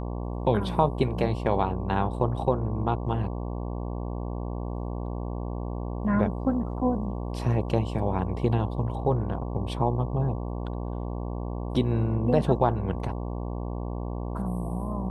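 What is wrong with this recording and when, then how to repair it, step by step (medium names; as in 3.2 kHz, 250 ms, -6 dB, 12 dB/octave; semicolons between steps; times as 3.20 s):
buzz 60 Hz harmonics 19 -32 dBFS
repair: de-hum 60 Hz, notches 19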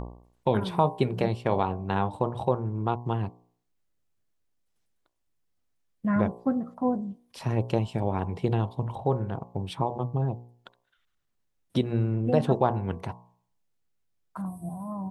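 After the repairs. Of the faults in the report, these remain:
nothing left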